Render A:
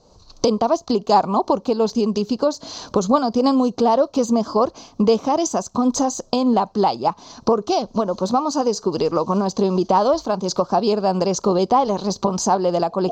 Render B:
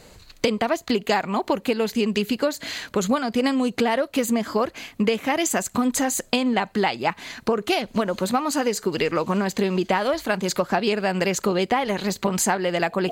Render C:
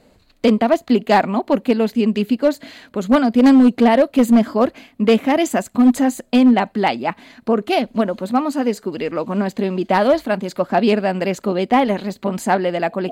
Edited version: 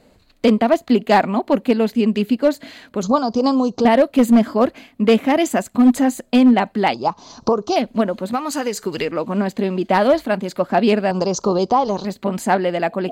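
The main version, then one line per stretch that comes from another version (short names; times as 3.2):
C
3.03–3.85 from A
6.94–7.76 from A
8.33–9.05 from B
11.11–12.05 from A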